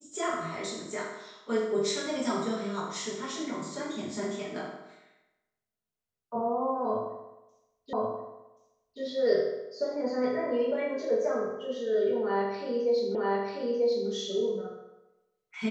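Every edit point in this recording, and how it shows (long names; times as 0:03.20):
0:07.93: the same again, the last 1.08 s
0:13.15: the same again, the last 0.94 s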